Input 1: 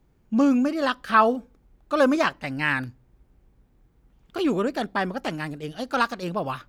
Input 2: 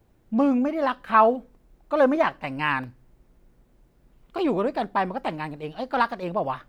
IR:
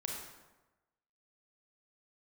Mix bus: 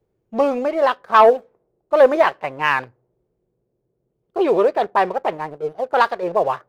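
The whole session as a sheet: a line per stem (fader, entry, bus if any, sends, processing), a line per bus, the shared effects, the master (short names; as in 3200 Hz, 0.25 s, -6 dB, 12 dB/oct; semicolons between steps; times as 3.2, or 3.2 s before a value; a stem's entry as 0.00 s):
-8.0 dB, 0.00 s, no send, auto duck -12 dB, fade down 1.10 s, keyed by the second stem
+2.5 dB, 0.00 s, polarity flipped, no send, HPF 94 Hz 24 dB/oct; low-pass opened by the level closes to 300 Hz, open at -18 dBFS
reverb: off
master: resonant low shelf 330 Hz -7 dB, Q 3; sample leveller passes 1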